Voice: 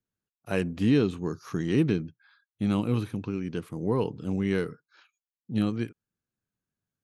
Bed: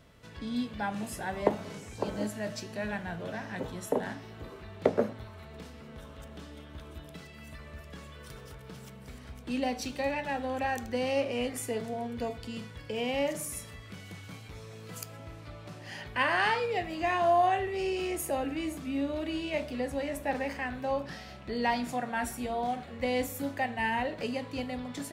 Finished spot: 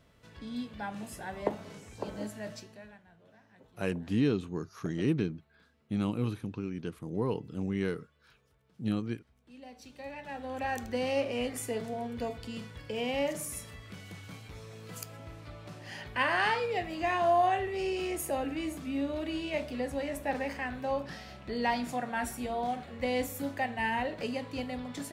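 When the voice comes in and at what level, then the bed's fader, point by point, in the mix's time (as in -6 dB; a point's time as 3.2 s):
3.30 s, -5.0 dB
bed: 2.54 s -5 dB
3.04 s -23 dB
9.36 s -23 dB
10.76 s -1 dB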